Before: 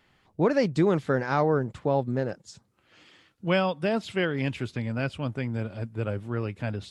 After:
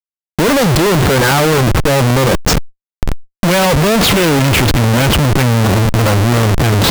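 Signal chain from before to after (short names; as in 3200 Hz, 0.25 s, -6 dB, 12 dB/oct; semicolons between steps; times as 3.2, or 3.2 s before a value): sample leveller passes 3; Schmitt trigger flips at -37 dBFS; fast leveller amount 70%; gain +9 dB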